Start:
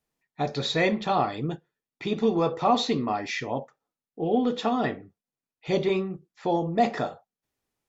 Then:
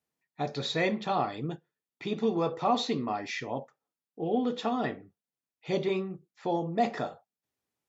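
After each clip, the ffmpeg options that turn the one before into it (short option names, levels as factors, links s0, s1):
-af "highpass=81,volume=0.596"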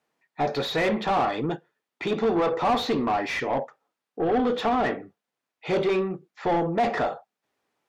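-filter_complex "[0:a]asplit=2[s0][s1];[s1]highpass=f=720:p=1,volume=15.8,asoftclip=type=tanh:threshold=0.2[s2];[s0][s2]amix=inputs=2:normalize=0,lowpass=f=1300:p=1,volume=0.501"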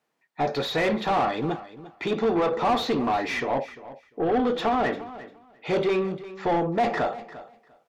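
-af "aecho=1:1:348|696:0.158|0.0254"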